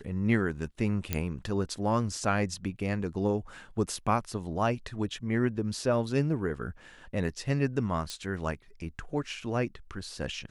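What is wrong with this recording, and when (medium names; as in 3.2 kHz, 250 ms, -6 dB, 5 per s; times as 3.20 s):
1.13 s: pop -12 dBFS
8.10 s: pop -21 dBFS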